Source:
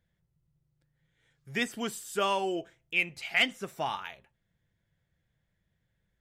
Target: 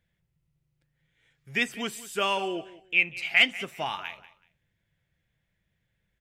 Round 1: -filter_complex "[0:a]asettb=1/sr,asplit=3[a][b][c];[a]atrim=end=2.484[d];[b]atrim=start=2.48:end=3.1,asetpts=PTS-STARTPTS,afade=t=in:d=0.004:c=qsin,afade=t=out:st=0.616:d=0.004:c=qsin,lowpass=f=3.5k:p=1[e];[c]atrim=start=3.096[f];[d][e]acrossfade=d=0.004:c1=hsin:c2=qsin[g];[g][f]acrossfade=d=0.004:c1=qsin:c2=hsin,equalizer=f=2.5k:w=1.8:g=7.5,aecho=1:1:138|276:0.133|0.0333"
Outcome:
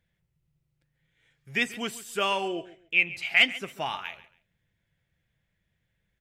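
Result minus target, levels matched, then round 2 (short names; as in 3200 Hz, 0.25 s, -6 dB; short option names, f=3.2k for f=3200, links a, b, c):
echo 50 ms early
-filter_complex "[0:a]asettb=1/sr,asplit=3[a][b][c];[a]atrim=end=2.484[d];[b]atrim=start=2.48:end=3.1,asetpts=PTS-STARTPTS,afade=t=in:d=0.004:c=qsin,afade=t=out:st=0.616:d=0.004:c=qsin,lowpass=f=3.5k:p=1[e];[c]atrim=start=3.096[f];[d][e]acrossfade=d=0.004:c1=hsin:c2=qsin[g];[g][f]acrossfade=d=0.004:c1=qsin:c2=hsin,equalizer=f=2.5k:w=1.8:g=7.5,aecho=1:1:188|376:0.133|0.0333"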